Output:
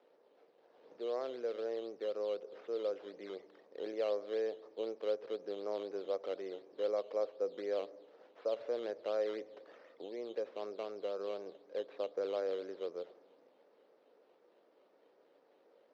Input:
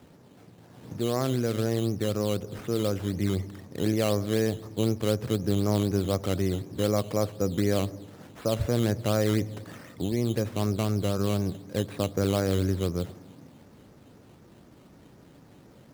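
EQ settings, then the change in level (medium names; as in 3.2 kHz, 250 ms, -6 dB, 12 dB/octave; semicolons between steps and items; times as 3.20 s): ladder high-pass 420 Hz, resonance 55%; distance through air 160 m; resonant high shelf 6.5 kHz -7.5 dB, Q 1.5; -3.5 dB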